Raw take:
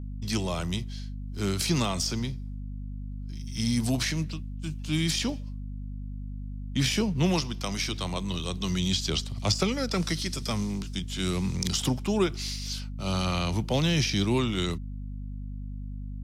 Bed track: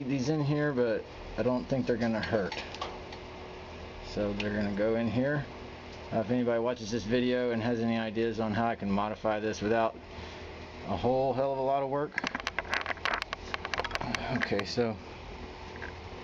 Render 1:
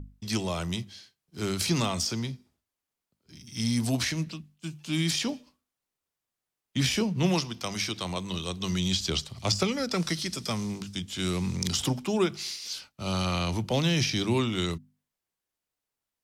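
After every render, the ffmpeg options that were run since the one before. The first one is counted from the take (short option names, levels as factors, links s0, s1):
-af "bandreject=f=50:t=h:w=6,bandreject=f=100:t=h:w=6,bandreject=f=150:t=h:w=6,bandreject=f=200:t=h:w=6,bandreject=f=250:t=h:w=6"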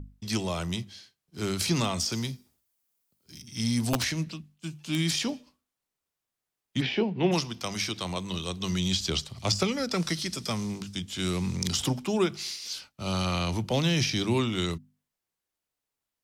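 -filter_complex "[0:a]asettb=1/sr,asplit=3[s0][s1][s2];[s0]atrim=end=2.124[s3];[s1]atrim=start=2.12:end=3.42,asetpts=PTS-STARTPTS,afade=t=in:d=0.004:c=qsin,afade=t=out:st=1.296:d=0.004:c=qsin,aemphasis=mode=production:type=50kf[s4];[s2]atrim=start=3.416[s5];[s3][s4]acrossfade=d=0.004:c1=hsin:c2=qsin[s6];[s6][s5]acrossfade=d=0.004:c1=qsin:c2=hsin,asettb=1/sr,asplit=3[s7][s8][s9];[s7]atrim=end=3.934[s10];[s8]atrim=start=3.93:end=4.99,asetpts=PTS-STARTPTS,afade=t=in:d=0.004:c=qsin,afade=t=out:st=1.056:d=0.004:c=qsin,aeval=exprs='(mod(7.94*val(0)+1,2)-1)/7.94':c=same[s11];[s9]atrim=start=4.986[s12];[s10][s11]acrossfade=d=0.004:c1=hsin:c2=qsin[s13];[s13][s12]acrossfade=d=0.004:c1=qsin:c2=hsin,asplit=3[s14][s15][s16];[s14]afade=t=out:st=6.8:d=0.02[s17];[s15]highpass=180,equalizer=f=380:t=q:w=4:g=7,equalizer=f=790:t=q:w=4:g=7,equalizer=f=1200:t=q:w=4:g=-7,lowpass=f=3400:w=0.5412,lowpass=f=3400:w=1.3066,afade=t=in:st=6.8:d=0.02,afade=t=out:st=7.31:d=0.02[s18];[s16]afade=t=in:st=7.31:d=0.02[s19];[s17][s18][s19]amix=inputs=3:normalize=0"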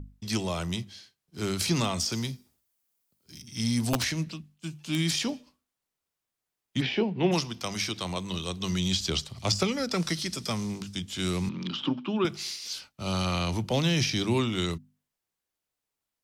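-filter_complex "[0:a]asettb=1/sr,asplit=3[s0][s1][s2];[s0]atrim=end=11.494[s3];[s1]atrim=start=11.49:end=12.25,asetpts=PTS-STARTPTS,afade=t=in:d=0.004:c=qsin,afade=t=out:st=0.756:d=0.004:c=qsin,highpass=f=170:w=0.5412,highpass=f=170:w=1.3066,equalizer=f=290:t=q:w=4:g=6,equalizer=f=450:t=q:w=4:g=-9,equalizer=f=720:t=q:w=4:g=-10,equalizer=f=1200:t=q:w=4:g=4,equalizer=f=2000:t=q:w=4:g=-8,equalizer=f=3100:t=q:w=4:g=4,lowpass=f=3300:w=0.5412,lowpass=f=3300:w=1.3066[s4];[s2]atrim=start=12.246[s5];[s3][s4]acrossfade=d=0.004:c1=hsin:c2=qsin[s6];[s6][s5]acrossfade=d=0.004:c1=qsin:c2=hsin"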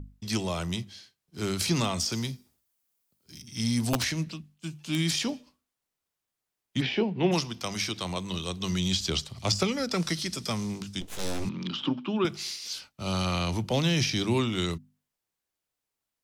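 -filter_complex "[0:a]asplit=3[s0][s1][s2];[s0]afade=t=out:st=11:d=0.02[s3];[s1]aeval=exprs='abs(val(0))':c=same,afade=t=in:st=11:d=0.02,afade=t=out:st=11.44:d=0.02[s4];[s2]afade=t=in:st=11.44:d=0.02[s5];[s3][s4][s5]amix=inputs=3:normalize=0"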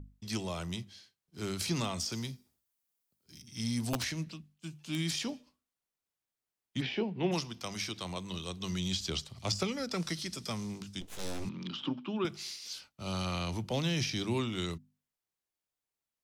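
-af "volume=0.473"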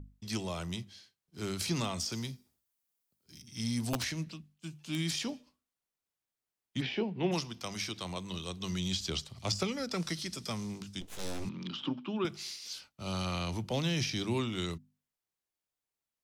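-af anull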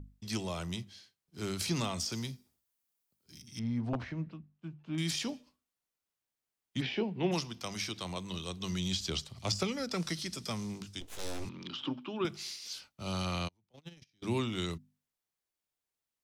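-filter_complex "[0:a]asettb=1/sr,asplit=3[s0][s1][s2];[s0]atrim=end=3.594[s3];[s1]atrim=start=3.59:end=4.98,asetpts=PTS-STARTPTS,afade=t=in:d=0.004:c=qsin,afade=t=out:st=1.386:d=0.004:c=qsin,lowpass=1400[s4];[s2]atrim=start=4.976[s5];[s3][s4]acrossfade=d=0.004:c1=hsin:c2=qsin[s6];[s6][s5]acrossfade=d=0.004:c1=qsin:c2=hsin,asettb=1/sr,asplit=3[s7][s8][s9];[s7]atrim=end=10.854[s10];[s8]atrim=start=10.85:end=12.21,asetpts=PTS-STARTPTS,afade=t=in:d=0.004:c=qsin,afade=t=out:st=1.356:d=0.004:c=qsin,equalizer=f=190:t=o:w=0.4:g=-10[s11];[s9]atrim=start=12.206[s12];[s10][s11]acrossfade=d=0.004:c1=hsin:c2=qsin[s13];[s13][s12]acrossfade=d=0.004:c1=qsin:c2=hsin,asplit=3[s14][s15][s16];[s14]afade=t=out:st=13.47:d=0.02[s17];[s15]agate=range=0.01:threshold=0.0398:ratio=16:release=100:detection=peak,afade=t=in:st=13.47:d=0.02,afade=t=out:st=14.22:d=0.02[s18];[s16]afade=t=in:st=14.22:d=0.02[s19];[s17][s18][s19]amix=inputs=3:normalize=0"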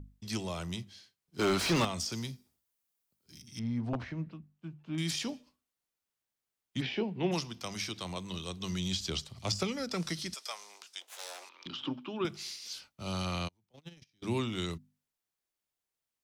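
-filter_complex "[0:a]asettb=1/sr,asplit=3[s0][s1][s2];[s0]atrim=end=1.394[s3];[s1]atrim=start=1.39:end=1.85,asetpts=PTS-STARTPTS,afade=t=in:d=0.004:c=qsin,afade=t=out:st=0.456:d=0.004:c=qsin,asplit=2[s4][s5];[s5]highpass=f=720:p=1,volume=25.1,asoftclip=type=tanh:threshold=0.126[s6];[s4][s6]amix=inputs=2:normalize=0,lowpass=f=1900:p=1,volume=0.501[s7];[s2]atrim=start=1.846[s8];[s3][s7]acrossfade=d=0.004:c1=hsin:c2=qsin[s9];[s9][s8]acrossfade=d=0.004:c1=qsin:c2=hsin,asettb=1/sr,asplit=3[s10][s11][s12];[s10]atrim=end=10.344[s13];[s11]atrim=start=10.34:end=11.66,asetpts=PTS-STARTPTS,afade=t=in:d=0.004:c=qsin,afade=t=out:st=1.316:d=0.004:c=qsin,highpass=f=620:w=0.5412,highpass=f=620:w=1.3066[s14];[s12]atrim=start=11.656[s15];[s13][s14]acrossfade=d=0.004:c1=hsin:c2=qsin[s16];[s16][s15]acrossfade=d=0.004:c1=qsin:c2=hsin"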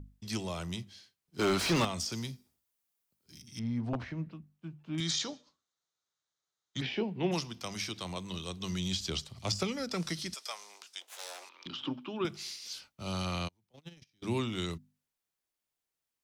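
-filter_complex "[0:a]asettb=1/sr,asplit=3[s0][s1][s2];[s0]atrim=end=5.004[s3];[s1]atrim=start=5:end=6.81,asetpts=PTS-STARTPTS,afade=t=in:d=0.004:c=qsin,afade=t=out:st=1.806:d=0.004:c=qsin,highpass=100,equalizer=f=240:t=q:w=4:g=-10,equalizer=f=1300:t=q:w=4:g=6,equalizer=f=2600:t=q:w=4:g=-8,equalizer=f=3800:t=q:w=4:g=9,equalizer=f=6500:t=q:w=4:g=7,lowpass=f=7400:w=0.5412,lowpass=f=7400:w=1.3066[s4];[s2]atrim=start=6.806[s5];[s3][s4]acrossfade=d=0.004:c1=hsin:c2=qsin[s6];[s6][s5]acrossfade=d=0.004:c1=qsin:c2=hsin"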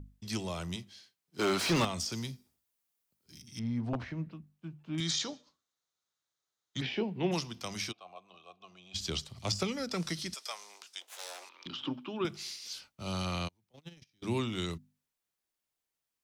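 -filter_complex "[0:a]asettb=1/sr,asplit=3[s0][s1][s2];[s0]atrim=end=0.764[s3];[s1]atrim=start=0.76:end=1.69,asetpts=PTS-STARTPTS,afade=t=in:d=0.004:c=qsin,afade=t=out:st=0.926:d=0.004:c=qsin,highpass=f=190:p=1[s4];[s2]atrim=start=1.686[s5];[s3][s4]acrossfade=d=0.004:c1=hsin:c2=qsin[s6];[s6][s5]acrossfade=d=0.004:c1=qsin:c2=hsin,asplit=3[s7][s8][s9];[s7]afade=t=out:st=7.91:d=0.02[s10];[s8]asplit=3[s11][s12][s13];[s11]bandpass=f=730:t=q:w=8,volume=1[s14];[s12]bandpass=f=1090:t=q:w=8,volume=0.501[s15];[s13]bandpass=f=2440:t=q:w=8,volume=0.355[s16];[s14][s15][s16]amix=inputs=3:normalize=0,afade=t=in:st=7.91:d=0.02,afade=t=out:st=8.94:d=0.02[s17];[s9]afade=t=in:st=8.94:d=0.02[s18];[s10][s17][s18]amix=inputs=3:normalize=0"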